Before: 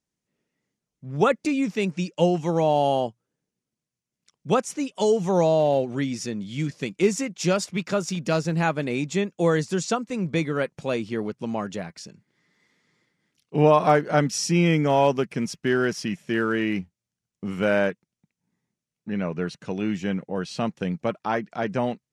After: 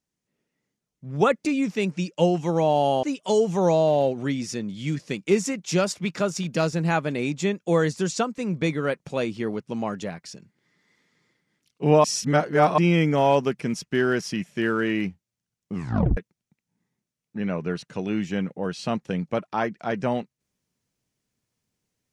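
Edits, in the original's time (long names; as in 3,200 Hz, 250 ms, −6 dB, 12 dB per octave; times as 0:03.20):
0:03.03–0:04.75: remove
0:13.76–0:14.50: reverse
0:17.47: tape stop 0.42 s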